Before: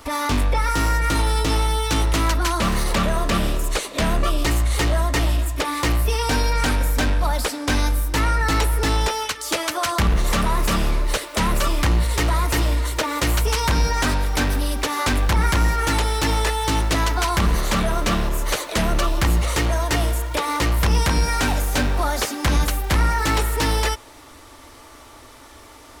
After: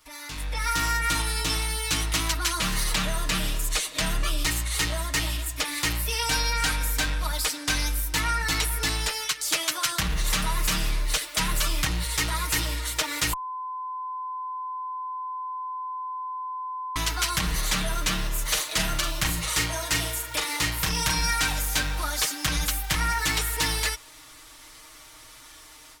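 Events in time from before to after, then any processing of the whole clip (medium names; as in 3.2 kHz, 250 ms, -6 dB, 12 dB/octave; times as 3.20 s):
13.33–16.96 s: bleep 1.02 kHz -11 dBFS
18.41–21.33 s: doubling 42 ms -7 dB
whole clip: amplifier tone stack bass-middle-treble 5-5-5; comb 6.4 ms, depth 73%; level rider gain up to 12 dB; trim -6 dB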